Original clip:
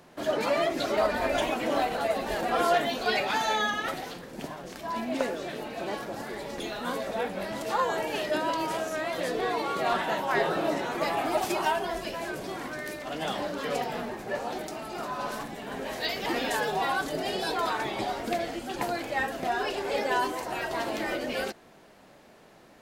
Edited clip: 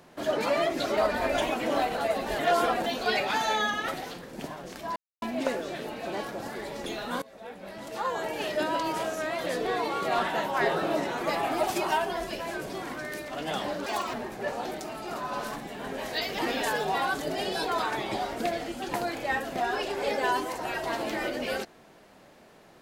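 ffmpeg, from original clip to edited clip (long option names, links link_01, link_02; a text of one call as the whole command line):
ffmpeg -i in.wav -filter_complex "[0:a]asplit=7[link_01][link_02][link_03][link_04][link_05][link_06][link_07];[link_01]atrim=end=2.392[link_08];[link_02]atrim=start=2.388:end=2.862,asetpts=PTS-STARTPTS,areverse[link_09];[link_03]atrim=start=2.858:end=4.96,asetpts=PTS-STARTPTS,afade=type=out:start_time=2.098:duration=0.004:curve=hsin,apad=pad_dur=0.26[link_10];[link_04]atrim=start=4.96:end=6.96,asetpts=PTS-STARTPTS,afade=type=in:duration=0.004:curve=hsin,afade=type=out:start_time=1.996:duration=0.004:curve=hsin:silence=0.0841395[link_11];[link_05]atrim=start=6.96:end=13.604,asetpts=PTS-STARTPTS,afade=type=in:duration=1.39:silence=0.0841395[link_12];[link_06]atrim=start=13.6:end=14.01,asetpts=PTS-STARTPTS,asetrate=65268,aresample=44100[link_13];[link_07]atrim=start=14.006[link_14];[link_08][link_09]acrossfade=duration=0.004:curve1=hsin:curve2=hsin[link_15];[link_10][link_11][link_12]concat=n=3:v=0:a=1[link_16];[link_15][link_16]acrossfade=duration=0.004:curve1=hsin:curve2=hsin[link_17];[link_17][link_13]acrossfade=duration=0.004:curve1=hsin:curve2=hsin[link_18];[link_18][link_14]acrossfade=duration=0.004:curve1=hsin:curve2=hsin" out.wav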